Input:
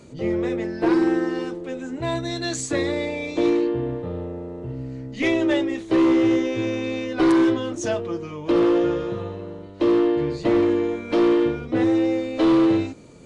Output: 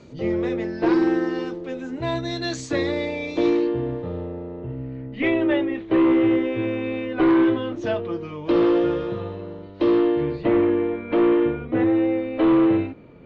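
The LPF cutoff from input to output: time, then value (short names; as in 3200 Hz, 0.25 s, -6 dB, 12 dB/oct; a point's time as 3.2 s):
LPF 24 dB/oct
4.13 s 5800 Hz
4.79 s 3000 Hz
7.3 s 3000 Hz
8.43 s 4800 Hz
9.83 s 4800 Hz
10.59 s 2800 Hz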